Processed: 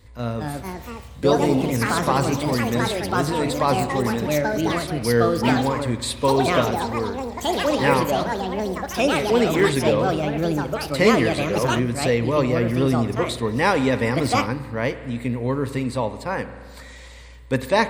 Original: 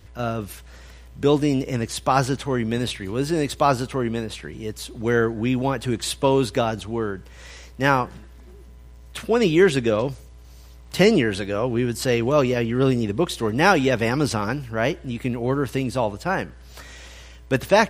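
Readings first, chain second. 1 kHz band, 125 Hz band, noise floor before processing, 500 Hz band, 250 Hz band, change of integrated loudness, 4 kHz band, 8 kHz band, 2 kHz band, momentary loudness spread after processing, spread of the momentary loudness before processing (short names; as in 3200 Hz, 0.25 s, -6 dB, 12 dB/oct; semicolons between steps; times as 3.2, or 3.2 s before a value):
+2.0 dB, +1.5 dB, -45 dBFS, +1.0 dB, +1.0 dB, +0.5 dB, +1.5 dB, +2.0 dB, +1.0 dB, 9 LU, 15 LU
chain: ripple EQ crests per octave 0.98, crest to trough 8 dB; spring tank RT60 1.9 s, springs 42 ms, chirp 25 ms, DRR 11 dB; echoes that change speed 0.259 s, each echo +4 st, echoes 3; gain -2.5 dB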